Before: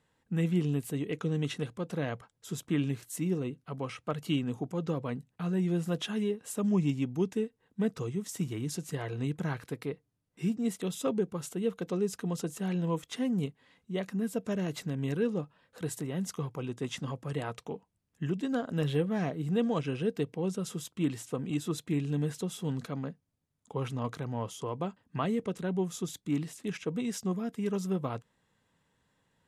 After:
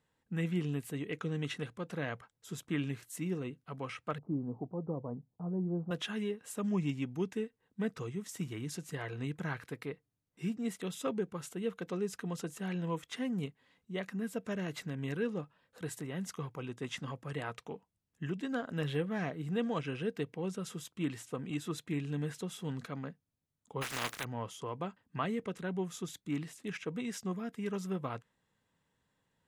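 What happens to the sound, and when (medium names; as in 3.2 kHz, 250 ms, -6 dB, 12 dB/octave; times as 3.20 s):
4.18–5.91 s: steep low-pass 950 Hz
23.81–24.23 s: spectral contrast reduction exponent 0.29
whole clip: dynamic bell 1.8 kHz, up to +7 dB, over -54 dBFS, Q 0.87; trim -5.5 dB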